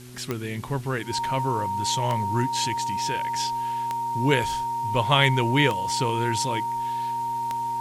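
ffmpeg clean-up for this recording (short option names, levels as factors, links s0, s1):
-af "adeclick=t=4,bandreject=f=123.9:t=h:w=4,bandreject=f=247.8:t=h:w=4,bandreject=f=371.7:t=h:w=4,bandreject=f=930:w=30,afwtdn=0.0035"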